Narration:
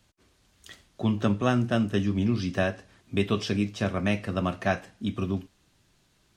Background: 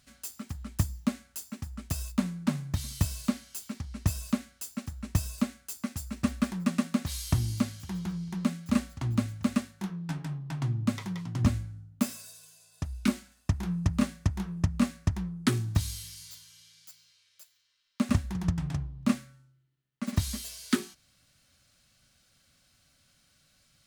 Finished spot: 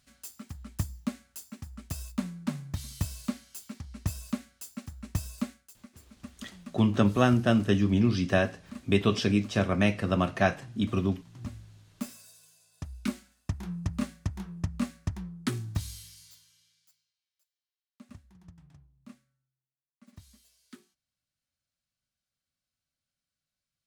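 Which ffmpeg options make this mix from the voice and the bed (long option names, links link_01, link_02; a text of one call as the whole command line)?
ffmpeg -i stem1.wav -i stem2.wav -filter_complex "[0:a]adelay=5750,volume=1.5dB[link_01];[1:a]volume=8dB,afade=type=out:start_time=5.49:duration=0.24:silence=0.223872,afade=type=in:start_time=11.34:duration=1.11:silence=0.251189,afade=type=out:start_time=15.96:duration=1.18:silence=0.112202[link_02];[link_01][link_02]amix=inputs=2:normalize=0" out.wav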